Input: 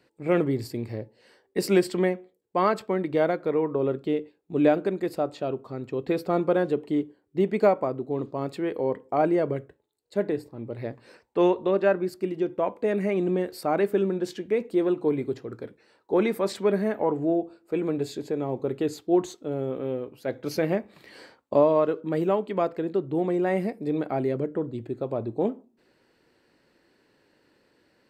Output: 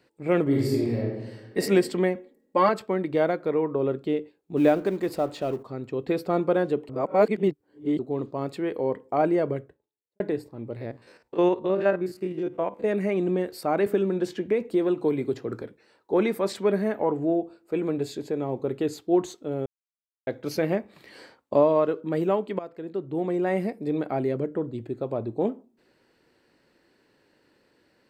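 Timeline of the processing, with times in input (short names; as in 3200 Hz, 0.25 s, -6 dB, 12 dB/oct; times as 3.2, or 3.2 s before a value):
0.43–1.58 reverb throw, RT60 1.2 s, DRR -4 dB
2.15–2.69 comb 3.6 ms, depth 92%
4.57–5.63 G.711 law mismatch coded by mu
6.89–7.99 reverse
9.48–10.2 studio fade out
10.76–12.84 stepped spectrum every 50 ms
13.86–15.62 three-band squash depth 70%
19.66–20.27 mute
22.59–23.73 fade in equal-power, from -16 dB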